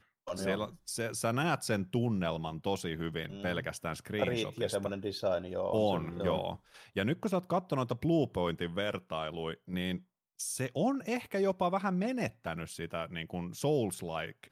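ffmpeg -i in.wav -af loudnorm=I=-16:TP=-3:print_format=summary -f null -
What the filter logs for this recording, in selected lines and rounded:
Input Integrated:    -34.4 LUFS
Input True Peak:     -16.3 dBTP
Input LRA:             1.5 LU
Input Threshold:     -44.4 LUFS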